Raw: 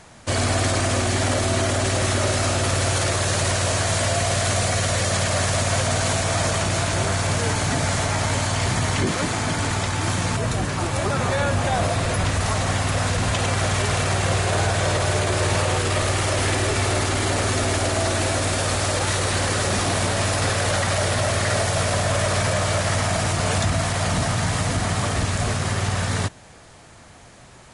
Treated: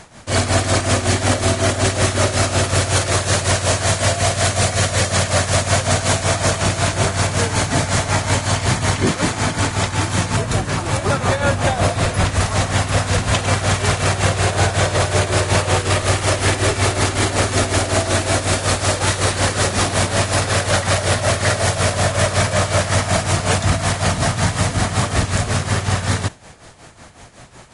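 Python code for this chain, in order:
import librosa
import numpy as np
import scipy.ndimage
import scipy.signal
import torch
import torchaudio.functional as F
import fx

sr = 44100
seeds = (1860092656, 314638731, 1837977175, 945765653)

y = x * (1.0 - 0.69 / 2.0 + 0.69 / 2.0 * np.cos(2.0 * np.pi * 5.4 * (np.arange(len(x)) / sr)))
y = F.gain(torch.from_numpy(y), 7.0).numpy()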